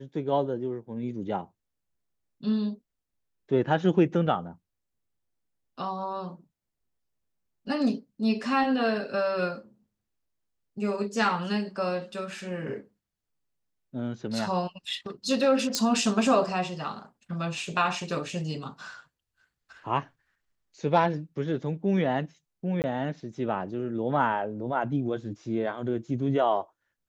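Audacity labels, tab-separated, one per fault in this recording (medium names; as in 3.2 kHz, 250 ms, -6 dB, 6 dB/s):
15.750000	15.750000	pop -10 dBFS
22.820000	22.840000	dropout 19 ms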